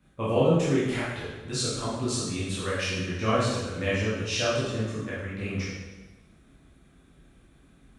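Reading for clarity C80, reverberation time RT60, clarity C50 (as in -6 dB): 2.5 dB, 1.1 s, -1.0 dB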